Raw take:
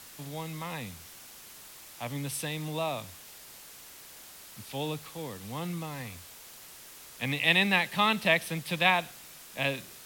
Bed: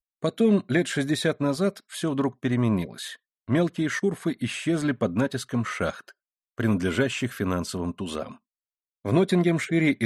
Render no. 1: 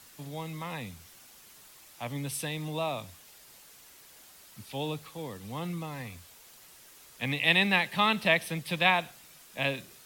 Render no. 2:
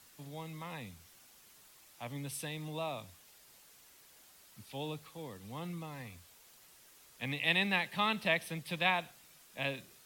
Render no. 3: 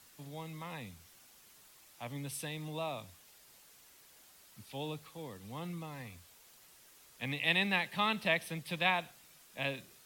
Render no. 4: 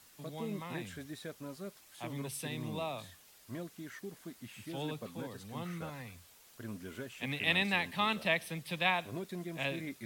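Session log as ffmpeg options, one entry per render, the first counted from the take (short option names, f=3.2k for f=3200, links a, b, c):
-af "afftdn=nr=6:nf=-50"
-af "volume=-6.5dB"
-af anull
-filter_complex "[1:a]volume=-20.5dB[a];[0:a][a]amix=inputs=2:normalize=0"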